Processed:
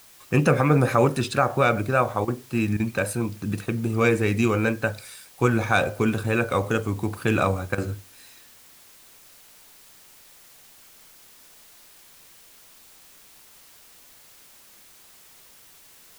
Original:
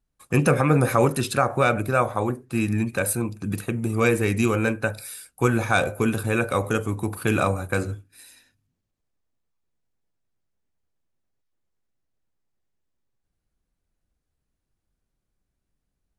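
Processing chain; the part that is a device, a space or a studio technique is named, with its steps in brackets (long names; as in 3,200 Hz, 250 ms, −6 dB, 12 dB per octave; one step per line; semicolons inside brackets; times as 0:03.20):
worn cassette (low-pass filter 7,000 Hz 12 dB per octave; tape wow and flutter 29 cents; tape dropouts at 0:02.25/0:02.77/0:07.75, 27 ms −12 dB; white noise bed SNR 25 dB)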